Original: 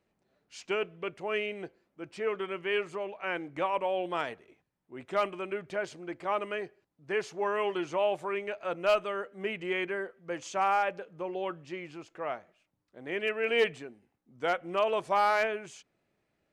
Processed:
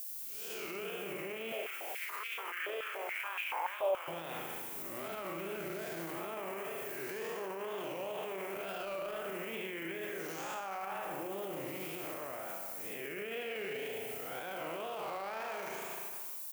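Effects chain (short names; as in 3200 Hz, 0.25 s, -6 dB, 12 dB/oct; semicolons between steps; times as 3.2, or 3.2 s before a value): time blur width 0.376 s; bit-crush 12-bit; frequency-shifting echo 0.154 s, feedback 55%, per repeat +96 Hz, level -18.5 dB; wow and flutter 140 cents; added noise violet -58 dBFS; high shelf 3700 Hz +10 dB; spring tank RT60 1.2 s, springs 36 ms, chirp 25 ms, DRR 3.5 dB; limiter -37 dBFS, peak gain reduction 21 dB; 1.52–4.08 stepped high-pass 7 Hz 580–2500 Hz; gain +5 dB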